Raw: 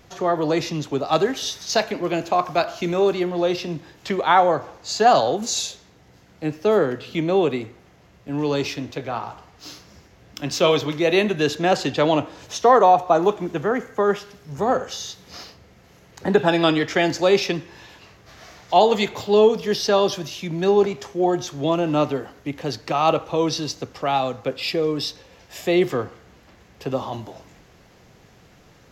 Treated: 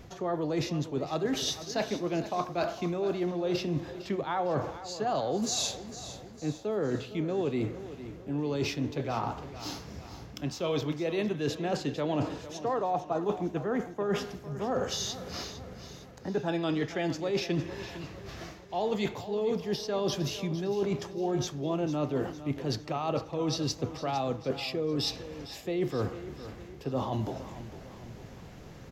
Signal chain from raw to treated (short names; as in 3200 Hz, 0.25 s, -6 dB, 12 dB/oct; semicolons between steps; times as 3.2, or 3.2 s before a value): low shelf 500 Hz +8 dB; reverse; compressor 10:1, threshold -26 dBFS, peak gain reduction 20 dB; reverse; feedback echo 0.455 s, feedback 49%, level -13.5 dB; gain -1.5 dB